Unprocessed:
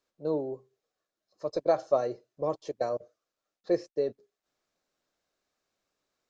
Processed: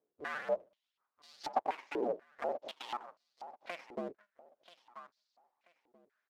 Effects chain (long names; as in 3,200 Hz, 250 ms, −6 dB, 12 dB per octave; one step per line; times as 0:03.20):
sub-harmonics by changed cycles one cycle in 2, inverted
0:01.68–0:03.83: parametric band 560 Hz +8.5 dB 1.6 octaves
brickwall limiter −16.5 dBFS, peak gain reduction 10 dB
downward compressor 2.5 to 1, threshold −35 dBFS, peak gain reduction 9.5 dB
floating-point word with a short mantissa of 2 bits
phase shifter 1.9 Hz, delay 1.1 ms, feedback 35%
repeating echo 984 ms, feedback 26%, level −15 dB
band-pass on a step sequencer 4.1 Hz 420–4,500 Hz
level +8.5 dB